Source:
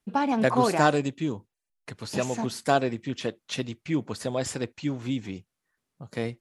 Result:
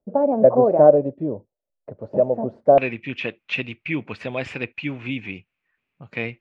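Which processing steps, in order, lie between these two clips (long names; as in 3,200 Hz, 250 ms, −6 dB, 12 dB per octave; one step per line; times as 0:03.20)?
low-pass with resonance 580 Hz, resonance Q 7.1, from 0:02.78 2,500 Hz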